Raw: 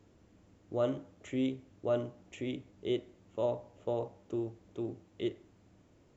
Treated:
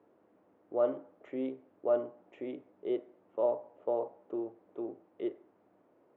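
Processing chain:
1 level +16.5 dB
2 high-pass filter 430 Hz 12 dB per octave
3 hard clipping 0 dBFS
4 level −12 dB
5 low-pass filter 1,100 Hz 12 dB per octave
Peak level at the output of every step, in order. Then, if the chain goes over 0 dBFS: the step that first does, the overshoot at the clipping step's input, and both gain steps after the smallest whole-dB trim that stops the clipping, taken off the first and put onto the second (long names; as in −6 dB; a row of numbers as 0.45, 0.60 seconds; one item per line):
−2.5, −5.0, −5.0, −17.0, −18.0 dBFS
no step passes full scale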